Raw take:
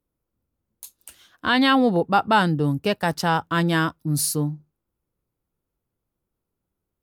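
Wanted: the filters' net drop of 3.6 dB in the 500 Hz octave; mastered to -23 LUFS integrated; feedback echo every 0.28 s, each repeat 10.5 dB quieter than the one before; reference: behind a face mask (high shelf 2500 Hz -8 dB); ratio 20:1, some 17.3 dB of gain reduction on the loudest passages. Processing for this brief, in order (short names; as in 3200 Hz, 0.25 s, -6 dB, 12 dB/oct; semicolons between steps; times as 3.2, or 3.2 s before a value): bell 500 Hz -4 dB; compressor 20:1, threshold -32 dBFS; high shelf 2500 Hz -8 dB; feedback echo 0.28 s, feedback 30%, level -10.5 dB; gain +14.5 dB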